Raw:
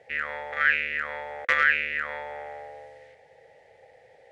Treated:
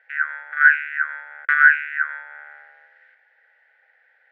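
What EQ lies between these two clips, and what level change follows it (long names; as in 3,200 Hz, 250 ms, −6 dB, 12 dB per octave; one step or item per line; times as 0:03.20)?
high-pass with resonance 1,500 Hz, resonance Q 14
high-frequency loss of the air 270 metres
dynamic equaliser 4,100 Hz, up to −6 dB, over −40 dBFS, Q 0.7
−3.5 dB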